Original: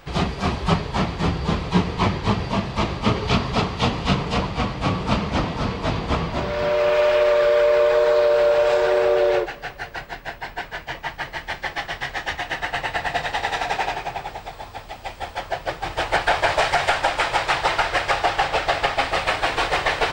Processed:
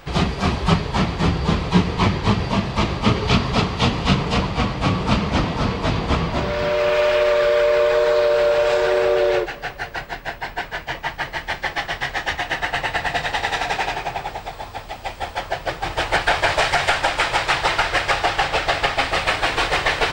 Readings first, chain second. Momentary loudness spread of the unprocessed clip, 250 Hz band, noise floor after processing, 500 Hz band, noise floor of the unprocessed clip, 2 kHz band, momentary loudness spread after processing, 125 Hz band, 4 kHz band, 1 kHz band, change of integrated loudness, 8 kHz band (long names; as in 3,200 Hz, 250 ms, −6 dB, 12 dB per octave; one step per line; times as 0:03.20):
14 LU, +3.0 dB, −37 dBFS, 0.0 dB, −41 dBFS, +2.5 dB, 11 LU, +3.5 dB, +3.5 dB, +1.0 dB, +1.5 dB, can't be measured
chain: dynamic equaliser 710 Hz, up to −4 dB, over −26 dBFS, Q 0.79
level +3.5 dB